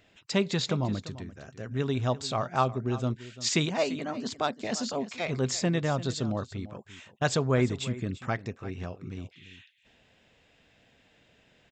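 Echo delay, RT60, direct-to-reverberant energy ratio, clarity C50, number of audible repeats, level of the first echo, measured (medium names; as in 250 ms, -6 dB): 343 ms, no reverb, no reverb, no reverb, 1, -16.0 dB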